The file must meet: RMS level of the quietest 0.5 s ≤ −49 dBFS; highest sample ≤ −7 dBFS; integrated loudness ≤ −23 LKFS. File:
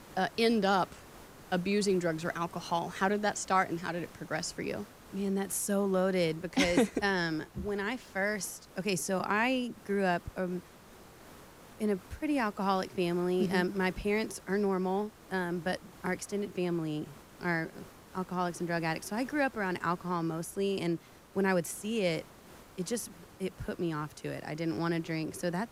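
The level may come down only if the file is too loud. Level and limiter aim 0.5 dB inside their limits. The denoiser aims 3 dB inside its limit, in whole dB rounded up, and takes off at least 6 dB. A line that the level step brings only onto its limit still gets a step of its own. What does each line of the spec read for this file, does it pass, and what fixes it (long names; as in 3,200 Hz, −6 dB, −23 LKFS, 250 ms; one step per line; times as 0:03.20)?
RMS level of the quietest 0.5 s −54 dBFS: in spec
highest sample −13.0 dBFS: in spec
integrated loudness −32.5 LKFS: in spec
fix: no processing needed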